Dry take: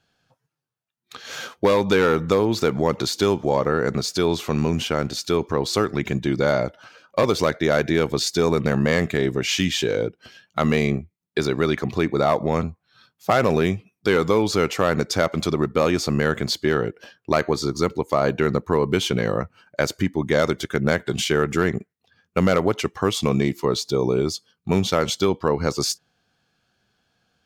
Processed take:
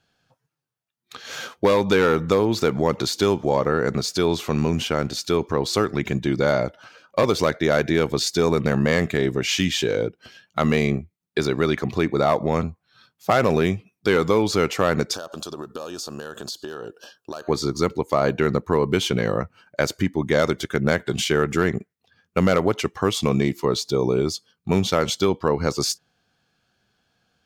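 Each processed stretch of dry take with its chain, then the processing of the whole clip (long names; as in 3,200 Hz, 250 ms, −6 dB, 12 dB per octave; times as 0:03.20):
0:15.14–0:17.48: bass and treble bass −11 dB, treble +7 dB + downward compressor 12 to 1, threshold −28 dBFS + Butterworth band-reject 2,100 Hz, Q 2.2
whole clip: no processing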